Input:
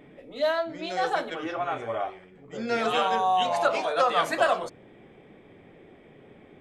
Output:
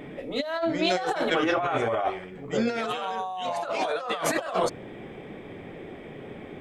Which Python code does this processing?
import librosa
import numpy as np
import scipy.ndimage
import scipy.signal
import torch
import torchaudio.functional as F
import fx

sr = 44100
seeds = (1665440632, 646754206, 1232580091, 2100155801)

y = fx.over_compress(x, sr, threshold_db=-33.0, ratio=-1.0)
y = y * 10.0 ** (5.0 / 20.0)